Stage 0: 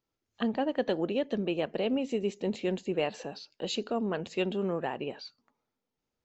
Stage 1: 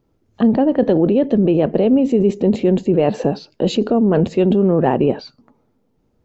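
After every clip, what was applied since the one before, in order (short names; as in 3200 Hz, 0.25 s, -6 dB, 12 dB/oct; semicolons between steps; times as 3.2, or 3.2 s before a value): tilt shelf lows +10 dB, about 900 Hz; in parallel at -1.5 dB: negative-ratio compressor -29 dBFS, ratio -0.5; on the sum: gain +7.5 dB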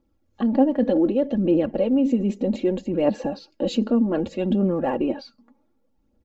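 comb 3.6 ms, depth 70%; phaser 0.65 Hz, delay 4.8 ms, feedback 42%; gain -9 dB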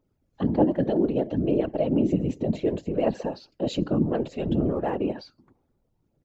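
whisperiser; gain -3.5 dB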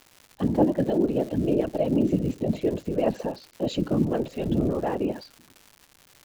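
crackle 270/s -37 dBFS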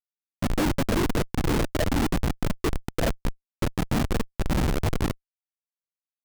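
spectral contrast raised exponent 1.6; Schmitt trigger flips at -21.5 dBFS; gain +4 dB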